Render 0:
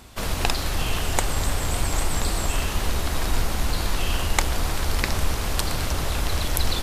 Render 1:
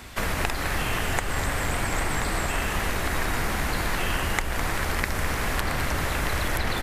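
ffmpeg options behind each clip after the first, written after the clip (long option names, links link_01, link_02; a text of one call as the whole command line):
ffmpeg -i in.wav -filter_complex "[0:a]equalizer=frequency=1900:width=1.5:gain=8,acrossover=split=87|2500|6100[link_01][link_02][link_03][link_04];[link_01]acompressor=threshold=-32dB:ratio=4[link_05];[link_02]acompressor=threshold=-29dB:ratio=4[link_06];[link_03]acompressor=threshold=-47dB:ratio=4[link_07];[link_04]acompressor=threshold=-42dB:ratio=4[link_08];[link_05][link_06][link_07][link_08]amix=inputs=4:normalize=0,aecho=1:1:207:0.316,volume=3dB" out.wav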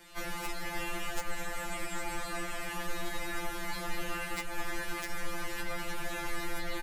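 ffmpeg -i in.wav -filter_complex "[0:a]asplit=2[link_01][link_02];[link_02]adelay=15,volume=-4dB[link_03];[link_01][link_03]amix=inputs=2:normalize=0,acrossover=split=410[link_04][link_05];[link_05]aeval=exprs='(mod(2.51*val(0)+1,2)-1)/2.51':channel_layout=same[link_06];[link_04][link_06]amix=inputs=2:normalize=0,afftfilt=real='re*2.83*eq(mod(b,8),0)':imag='im*2.83*eq(mod(b,8),0)':win_size=2048:overlap=0.75,volume=-9dB" out.wav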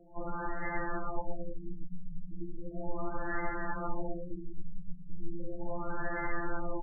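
ffmpeg -i in.wav -af "afftfilt=real='re*lt(b*sr/1024,260*pow(2100/260,0.5+0.5*sin(2*PI*0.36*pts/sr)))':imag='im*lt(b*sr/1024,260*pow(2100/260,0.5+0.5*sin(2*PI*0.36*pts/sr)))':win_size=1024:overlap=0.75,volume=3dB" out.wav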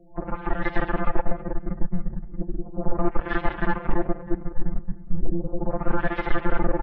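ffmpeg -i in.wav -filter_complex "[0:a]lowshelf=frequency=330:gain=8.5,asplit=2[link_01][link_02];[link_02]aecho=0:1:319|638|957|1276|1595:0.266|0.128|0.0613|0.0294|0.0141[link_03];[link_01][link_03]amix=inputs=2:normalize=0,aeval=exprs='0.251*(cos(1*acos(clip(val(0)/0.251,-1,1)))-cos(1*PI/2))+0.0631*(cos(7*acos(clip(val(0)/0.251,-1,1)))-cos(7*PI/2))':channel_layout=same,volume=2.5dB" out.wav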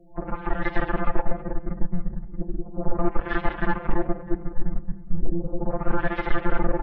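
ffmpeg -i in.wav -af "bandreject=frequency=64.02:width_type=h:width=4,bandreject=frequency=128.04:width_type=h:width=4,bandreject=frequency=192.06:width_type=h:width=4,bandreject=frequency=256.08:width_type=h:width=4,bandreject=frequency=320.1:width_type=h:width=4,bandreject=frequency=384.12:width_type=h:width=4,bandreject=frequency=448.14:width_type=h:width=4,bandreject=frequency=512.16:width_type=h:width=4,bandreject=frequency=576.18:width_type=h:width=4,bandreject=frequency=640.2:width_type=h:width=4,bandreject=frequency=704.22:width_type=h:width=4,bandreject=frequency=768.24:width_type=h:width=4,bandreject=frequency=832.26:width_type=h:width=4,bandreject=frequency=896.28:width_type=h:width=4,bandreject=frequency=960.3:width_type=h:width=4,bandreject=frequency=1024.32:width_type=h:width=4,bandreject=frequency=1088.34:width_type=h:width=4" out.wav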